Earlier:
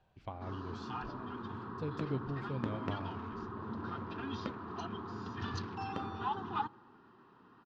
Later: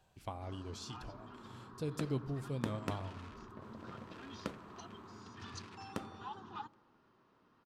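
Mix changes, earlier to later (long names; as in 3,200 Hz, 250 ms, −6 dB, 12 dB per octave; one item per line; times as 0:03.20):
first sound −11.0 dB
master: remove high-frequency loss of the air 210 metres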